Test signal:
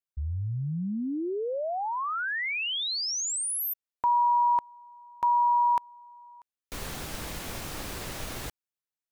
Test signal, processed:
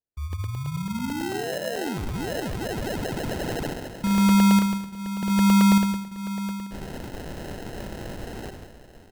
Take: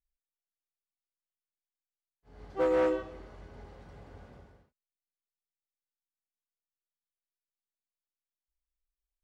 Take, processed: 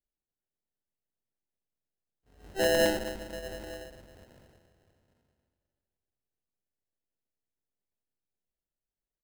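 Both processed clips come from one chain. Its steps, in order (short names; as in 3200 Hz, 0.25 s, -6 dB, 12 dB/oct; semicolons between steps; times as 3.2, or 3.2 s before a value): gate with hold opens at -38 dBFS, closes at -49 dBFS, range -7 dB; tapped delay 41/71/134/149/733/886 ms -18.5/-11/-18.5/-8.5/-17/-17 dB; Schroeder reverb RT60 2.3 s, combs from 29 ms, DRR 8 dB; sample-and-hold 38×; crackling interface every 0.11 s, samples 64, zero, from 0.33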